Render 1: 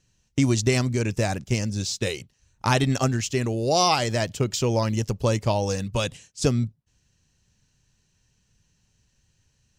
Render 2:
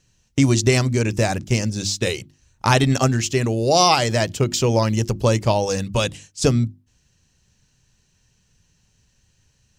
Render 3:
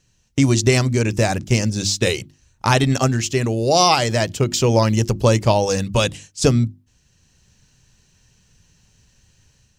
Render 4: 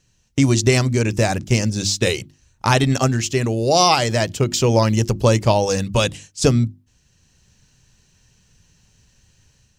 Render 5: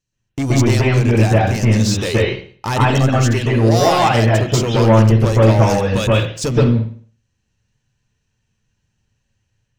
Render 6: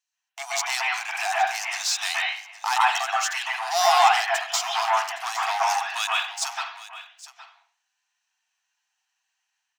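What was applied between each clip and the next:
notches 50/100/150/200/250/300/350 Hz; gain +5 dB
AGC gain up to 5.5 dB
nothing audible
sample leveller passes 3; reverb, pre-delay 0.123 s, DRR -6 dB; gain -12 dB
brick-wall FIR high-pass 670 Hz; echo 0.815 s -16 dB; gain -1.5 dB

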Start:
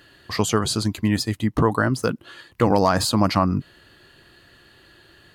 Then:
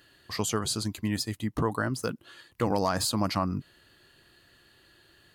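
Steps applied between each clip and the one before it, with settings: high shelf 5000 Hz +7 dB; gain -9 dB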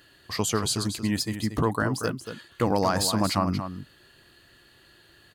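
echo 0.232 s -9.5 dB; gain +3 dB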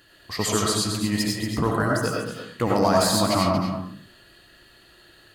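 digital reverb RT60 0.48 s, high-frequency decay 0.7×, pre-delay 50 ms, DRR -2 dB

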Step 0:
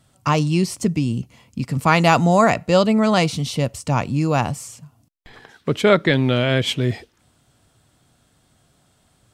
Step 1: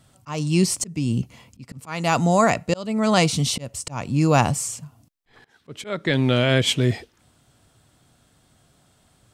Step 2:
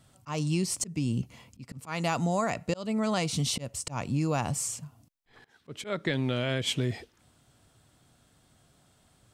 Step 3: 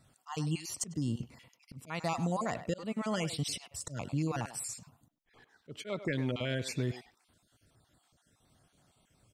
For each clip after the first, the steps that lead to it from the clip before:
dynamic EQ 8000 Hz, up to +6 dB, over -44 dBFS, Q 1; vocal rider within 3 dB 0.5 s; auto swell 0.36 s
compressor 10:1, threshold -20 dBFS, peak gain reduction 9 dB; gain -4 dB
random spectral dropouts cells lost 33%; speakerphone echo 0.1 s, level -11 dB; gain -4 dB

